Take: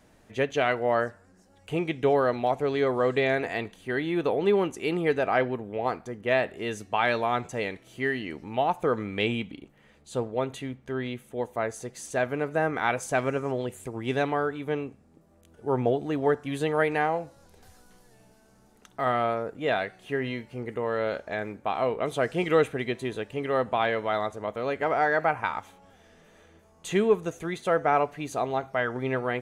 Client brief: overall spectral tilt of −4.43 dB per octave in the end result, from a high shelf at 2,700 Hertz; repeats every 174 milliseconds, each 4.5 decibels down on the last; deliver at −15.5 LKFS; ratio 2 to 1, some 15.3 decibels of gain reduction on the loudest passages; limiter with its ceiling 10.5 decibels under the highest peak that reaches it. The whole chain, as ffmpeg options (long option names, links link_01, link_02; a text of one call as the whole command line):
ffmpeg -i in.wav -af "highshelf=frequency=2700:gain=5.5,acompressor=threshold=-45dB:ratio=2,alimiter=level_in=8.5dB:limit=-24dB:level=0:latency=1,volume=-8.5dB,aecho=1:1:174|348|522|696|870|1044|1218|1392|1566:0.596|0.357|0.214|0.129|0.0772|0.0463|0.0278|0.0167|0.01,volume=26dB" out.wav